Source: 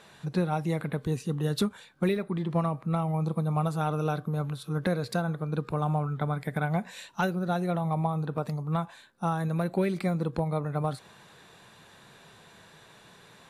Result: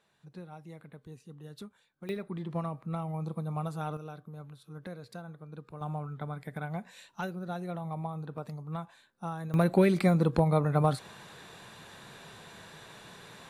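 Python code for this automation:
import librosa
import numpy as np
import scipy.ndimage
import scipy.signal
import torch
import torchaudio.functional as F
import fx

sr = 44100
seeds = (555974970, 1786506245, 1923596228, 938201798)

y = fx.gain(x, sr, db=fx.steps((0.0, -18.5), (2.09, -7.0), (3.97, -15.0), (5.81, -8.5), (9.54, 4.0)))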